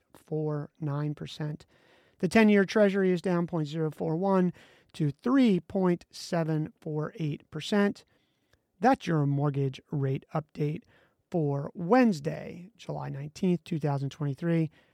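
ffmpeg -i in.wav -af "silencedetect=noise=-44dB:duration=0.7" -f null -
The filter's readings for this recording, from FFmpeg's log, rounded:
silence_start: 8.00
silence_end: 8.81 | silence_duration: 0.81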